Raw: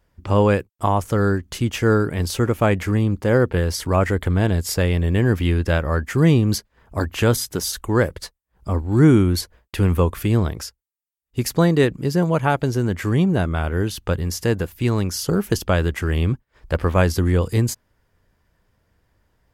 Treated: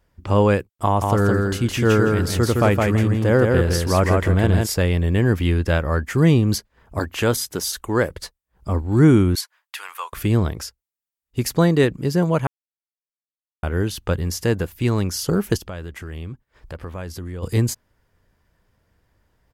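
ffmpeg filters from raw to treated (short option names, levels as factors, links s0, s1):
-filter_complex "[0:a]asplit=3[s0][s1][s2];[s0]afade=t=out:st=1.01:d=0.02[s3];[s1]aecho=1:1:164|328|492:0.708|0.156|0.0343,afade=t=in:st=1.01:d=0.02,afade=t=out:st=4.65:d=0.02[s4];[s2]afade=t=in:st=4.65:d=0.02[s5];[s3][s4][s5]amix=inputs=3:normalize=0,asettb=1/sr,asplit=3[s6][s7][s8];[s6]atrim=end=6.994[s9];[s7]atrim=start=6.99:end=8.1,asetpts=PTS-STARTPTS,afade=t=in:d=0.004:c=qsin,afade=t=out:st=1.106:d=0.004:c=qsin,lowshelf=f=160:g=-7.5[s10];[s8]atrim=start=8.096[s11];[s9][s10]acrossfade=d=0.004:c1=hsin:c2=qsin[s12];[s12][s11]acrossfade=d=0.004:c1=qsin:c2=hsin,asettb=1/sr,asplit=3[s13][s14][s15];[s13]atrim=end=9.354[s16];[s14]atrim=start=9.35:end=10.13,asetpts=PTS-STARTPTS,afade=t=in:d=0.004:c=qsin,afade=t=out:st=0.776:d=0.004:c=qsin,highpass=f=970:w=0.5412,highpass=f=970:w=1.3066[s17];[s15]atrim=start=10.126[s18];[s16][s17]acrossfade=d=0.004:c1=hsin:c2=qsin[s19];[s19][s18]acrossfade=d=0.004:c1=qsin:c2=hsin,asplit=3[s20][s21][s22];[s20]afade=t=out:st=15.56:d=0.02[s23];[s21]acompressor=threshold=0.0158:ratio=2.5:attack=3.2:release=140:knee=1:detection=peak,afade=t=in:st=15.56:d=0.02,afade=t=out:st=17.42:d=0.02[s24];[s22]afade=t=in:st=17.42:d=0.02[s25];[s23][s24][s25]amix=inputs=3:normalize=0,asplit=3[s26][s27][s28];[s26]atrim=end=12.47,asetpts=PTS-STARTPTS,afade=t=out:st=12.466:d=0.004:c=hsin[s29];[s27]atrim=start=12.47:end=13.63,asetpts=PTS-STARTPTS,volume=0[s30];[s28]atrim=start=13.63,asetpts=PTS-STARTPTS,afade=t=in:d=0.004:c=hsin[s31];[s29][s30][s31]concat=n=3:v=0:a=1"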